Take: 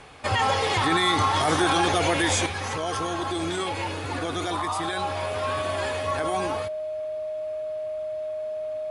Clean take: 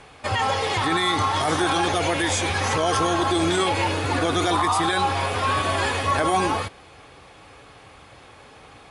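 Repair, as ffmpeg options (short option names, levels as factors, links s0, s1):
-af "bandreject=f=620:w=30,asetnsamples=n=441:p=0,asendcmd='2.46 volume volume 7dB',volume=1"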